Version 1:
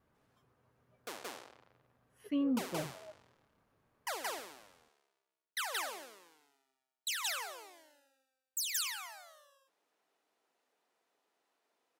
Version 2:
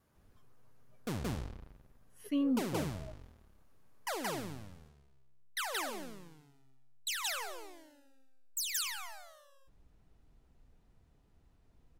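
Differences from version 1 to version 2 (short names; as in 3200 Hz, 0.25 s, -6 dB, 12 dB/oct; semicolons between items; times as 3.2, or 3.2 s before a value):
speech: add tone controls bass +3 dB, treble +10 dB; background: remove Bessel high-pass 590 Hz, order 4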